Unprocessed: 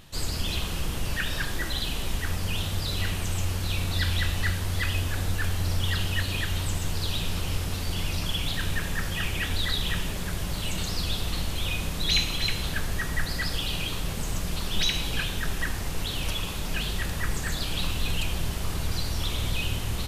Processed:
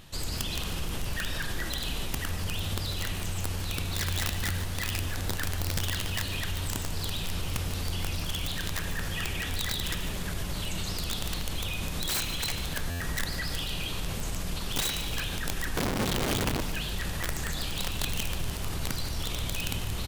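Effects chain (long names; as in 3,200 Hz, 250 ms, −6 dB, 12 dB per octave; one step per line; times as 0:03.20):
0:15.77–0:16.61: RIAA equalisation playback
wrap-around overflow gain 18 dB
brickwall limiter −23.5 dBFS, peak gain reduction 5.5 dB
repeating echo 147 ms, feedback 47%, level −13.5 dB
buffer that repeats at 0:12.90, samples 512, times 8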